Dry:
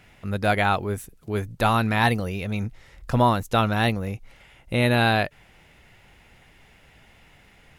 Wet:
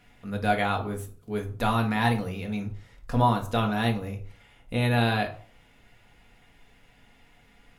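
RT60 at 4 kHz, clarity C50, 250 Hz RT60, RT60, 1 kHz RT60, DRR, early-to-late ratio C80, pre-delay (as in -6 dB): 0.30 s, 11.5 dB, 0.55 s, 0.45 s, 0.45 s, 2.5 dB, 16.5 dB, 4 ms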